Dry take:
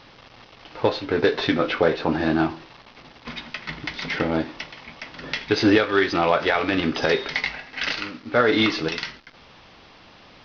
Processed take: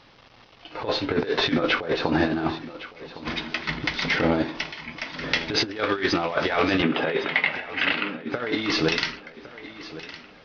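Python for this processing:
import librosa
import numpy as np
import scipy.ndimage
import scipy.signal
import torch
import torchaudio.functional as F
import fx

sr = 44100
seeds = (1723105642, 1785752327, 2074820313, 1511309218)

y = fx.noise_reduce_blind(x, sr, reduce_db=9)
y = fx.cheby1_bandpass(y, sr, low_hz=160.0, high_hz=3000.0, order=3, at=(6.82, 8.32))
y = fx.over_compress(y, sr, threshold_db=-23.0, ratio=-0.5)
y = fx.echo_feedback(y, sr, ms=1110, feedback_pct=46, wet_db=-16.0)
y = y * 10.0 ** (1.0 / 20.0)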